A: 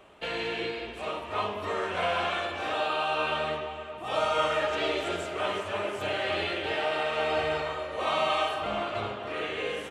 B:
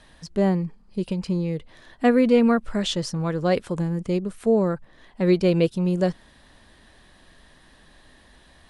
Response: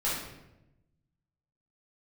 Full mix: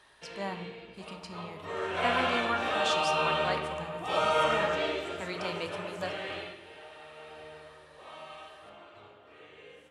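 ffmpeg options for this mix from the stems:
-filter_complex "[0:a]volume=0.841,afade=t=in:st=1.55:d=0.56:silence=0.223872,afade=t=out:st=4.51:d=0.56:silence=0.421697,afade=t=out:st=6.33:d=0.23:silence=0.237137,asplit=2[s0][s1];[s1]volume=0.211[s2];[1:a]lowshelf=f=630:t=q:w=1.5:g=-13.5,volume=0.422,asplit=2[s3][s4];[s4]volume=0.2[s5];[2:a]atrim=start_sample=2205[s6];[s2][s5]amix=inputs=2:normalize=0[s7];[s7][s6]afir=irnorm=-1:irlink=0[s8];[s0][s3][s8]amix=inputs=3:normalize=0,highpass=50"

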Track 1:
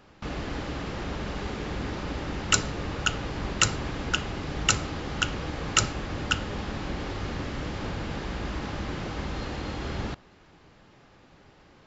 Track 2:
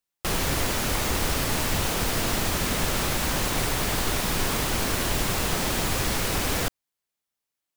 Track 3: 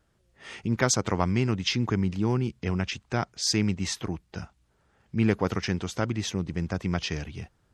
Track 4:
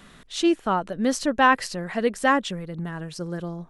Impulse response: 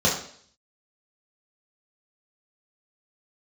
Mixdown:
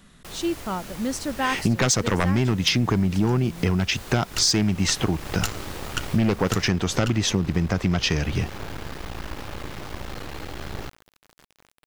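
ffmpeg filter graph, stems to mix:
-filter_complex "[0:a]aeval=exprs='max(val(0),0)':c=same,adynamicequalizer=threshold=0.002:dfrequency=220:dqfactor=2.4:tfrequency=220:tqfactor=2.4:attack=5:release=100:ratio=0.375:range=2.5:mode=cutabove:tftype=bell,acrusher=bits=7:mix=0:aa=0.000001,adelay=750,volume=1.33[s0];[1:a]volume=0.2[s1];[2:a]aeval=exprs='0.473*sin(PI/2*2.82*val(0)/0.473)':c=same,adelay=1000,volume=1.19[s2];[3:a]bass=f=250:g=7,treble=f=4000:g=6,volume=0.447,asplit=2[s3][s4];[s4]apad=whole_len=556523[s5];[s0][s5]sidechaincompress=threshold=0.00398:ratio=8:attack=16:release=1160[s6];[s6][s1][s2][s3]amix=inputs=4:normalize=0,acompressor=threshold=0.126:ratio=6"

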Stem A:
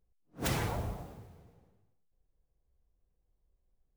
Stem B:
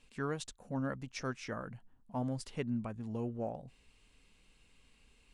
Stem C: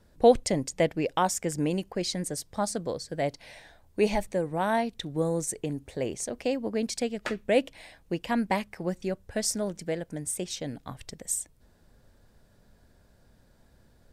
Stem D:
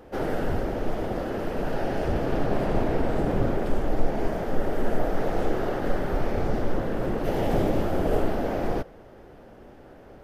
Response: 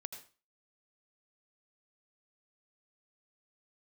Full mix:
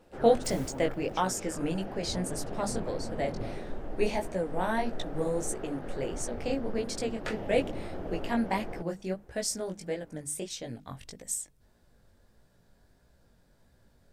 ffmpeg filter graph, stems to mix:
-filter_complex "[0:a]highshelf=f=3800:g=10,volume=0.211[s0];[1:a]volume=0.473,asplit=2[s1][s2];[2:a]bandreject=f=50:t=h:w=6,bandreject=f=100:t=h:w=6,bandreject=f=150:t=h:w=6,bandreject=f=200:t=h:w=6,bandreject=f=250:t=h:w=6,bandreject=f=300:t=h:w=6,flanger=delay=15.5:depth=6.7:speed=1.6,volume=1[s3];[3:a]lowpass=f=3300:p=1,volume=0.224[s4];[s2]apad=whole_len=174775[s5];[s0][s5]sidechaincompress=threshold=0.00501:ratio=8:attack=6.3:release=390[s6];[s6][s1][s3][s4]amix=inputs=4:normalize=0"

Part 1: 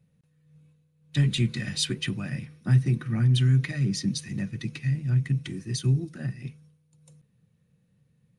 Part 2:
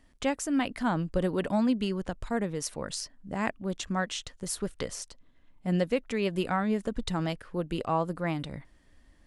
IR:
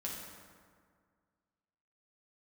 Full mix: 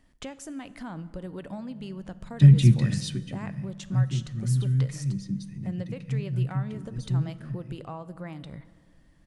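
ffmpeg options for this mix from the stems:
-filter_complex "[0:a]lowshelf=f=430:g=10.5,adelay=1250,volume=0.501,afade=t=out:st=2.84:d=0.42:silence=0.251189,asplit=2[s0][s1];[s1]volume=0.224[s2];[1:a]acompressor=threshold=0.0158:ratio=4,volume=0.708,asplit=2[s3][s4];[s4]volume=0.251[s5];[2:a]atrim=start_sample=2205[s6];[s2][s5]amix=inputs=2:normalize=0[s7];[s7][s6]afir=irnorm=-1:irlink=0[s8];[s0][s3][s8]amix=inputs=3:normalize=0,equalizer=f=140:t=o:w=0.87:g=5"

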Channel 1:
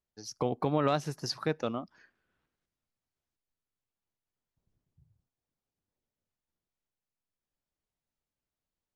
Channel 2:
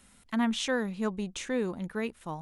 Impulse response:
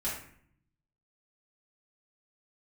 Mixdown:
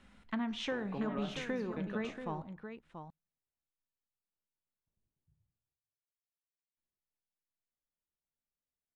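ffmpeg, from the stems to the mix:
-filter_complex "[0:a]highshelf=f=4800:g=-8.5,equalizer=f=5000:w=3.8:g=-12.5,adelay=300,volume=0.316,asplit=3[s0][s1][s2];[s0]atrim=end=5.74,asetpts=PTS-STARTPTS,afade=t=out:st=5.736:d=0.004:c=hsin[s3];[s1]atrim=start=5.74:end=6.77,asetpts=PTS-STARTPTS,volume=0[s4];[s2]atrim=start=6.77,asetpts=PTS-STARTPTS,afade=t=in:d=0.004:c=hsin[s5];[s3][s4][s5]concat=n=3:v=0:a=1,asplit=2[s6][s7];[s7]volume=0.178[s8];[1:a]lowpass=3200,acompressor=threshold=0.0224:ratio=6,volume=0.841,asplit=4[s9][s10][s11][s12];[s10]volume=0.158[s13];[s11]volume=0.422[s14];[s12]apad=whole_len=408329[s15];[s6][s15]sidechaincompress=threshold=0.00631:ratio=8:attack=16:release=198[s16];[2:a]atrim=start_sample=2205[s17];[s8][s13]amix=inputs=2:normalize=0[s18];[s18][s17]afir=irnorm=-1:irlink=0[s19];[s14]aecho=0:1:684:1[s20];[s16][s9][s19][s20]amix=inputs=4:normalize=0"

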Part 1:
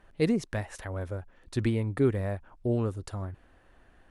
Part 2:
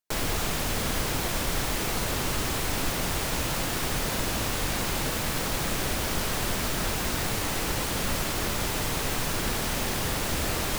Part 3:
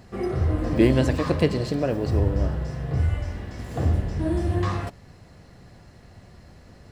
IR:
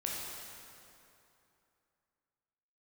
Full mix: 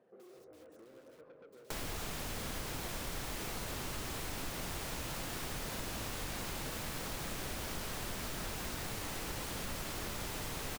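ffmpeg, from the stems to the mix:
-filter_complex "[0:a]flanger=delay=5.4:depth=5.4:regen=48:speed=1.4:shape=triangular,aeval=exprs='(mod(119*val(0)+1,2)-1)/119':c=same,volume=0.224[s0];[1:a]adelay=1600,volume=0.562[s1];[2:a]acompressor=threshold=0.0794:ratio=6,bandpass=f=490:t=q:w=3.7:csg=0,asoftclip=type=tanh:threshold=0.0168,volume=0.398,asplit=2[s2][s3];[s3]volume=0.168[s4];[s0][s2]amix=inputs=2:normalize=0,highpass=f=130:w=0.5412,highpass=f=130:w=1.3066,acompressor=threshold=0.00158:ratio=4,volume=1[s5];[s4]aecho=0:1:138|276|414|552|690|828|966|1104:1|0.52|0.27|0.141|0.0731|0.038|0.0198|0.0103[s6];[s1][s5][s6]amix=inputs=3:normalize=0,acompressor=threshold=0.00708:ratio=2"

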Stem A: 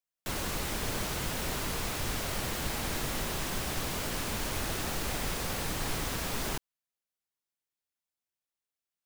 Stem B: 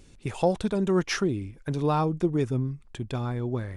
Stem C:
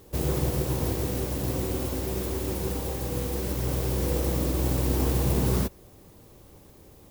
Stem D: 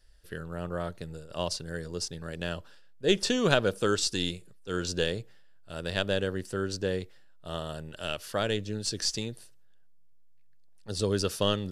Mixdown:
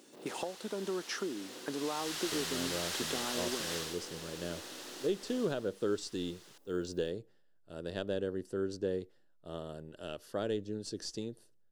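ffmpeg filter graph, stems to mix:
-filter_complex "[0:a]acontrast=37,bandpass=f=4000:t=q:w=0.65:csg=0,volume=0.75,afade=t=in:st=1.67:d=0.65:silence=0.237137,afade=t=out:st=3.75:d=0.23:silence=0.316228,afade=t=out:st=5.31:d=0.38:silence=0.281838[s0];[1:a]volume=1[s1];[2:a]acrossover=split=4800[s2][s3];[s3]acompressor=threshold=0.00316:ratio=4:attack=1:release=60[s4];[s2][s4]amix=inputs=2:normalize=0,asoftclip=type=tanh:threshold=0.0501,volume=0.178[s5];[3:a]equalizer=f=340:t=o:w=1.9:g=12,adelay=2000,volume=0.224[s6];[s1][s5]amix=inputs=2:normalize=0,highpass=f=250:w=0.5412,highpass=f=250:w=1.3066,acompressor=threshold=0.02:ratio=6,volume=1[s7];[s0][s6][s7]amix=inputs=3:normalize=0,equalizer=f=2300:w=4.4:g=-6.5,alimiter=limit=0.075:level=0:latency=1:release=468"

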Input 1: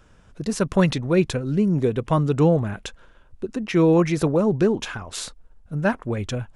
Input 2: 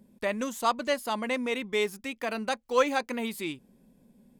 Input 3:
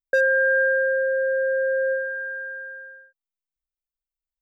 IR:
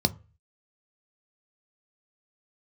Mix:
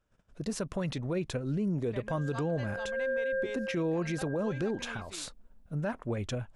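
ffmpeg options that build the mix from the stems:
-filter_complex "[0:a]agate=range=0.141:threshold=0.00316:ratio=16:detection=peak,equalizer=f=610:w=3.4:g=4,volume=0.447,asplit=2[s0][s1];[1:a]lowpass=5400,adelay=1700,volume=0.188[s2];[2:a]acompressor=threshold=0.0316:ratio=6,adelay=1950,volume=1.12[s3];[s1]apad=whole_len=280676[s4];[s3][s4]sidechaincompress=threshold=0.01:ratio=3:attack=16:release=303[s5];[s0][s2][s5]amix=inputs=3:normalize=0,alimiter=limit=0.0631:level=0:latency=1:release=98"

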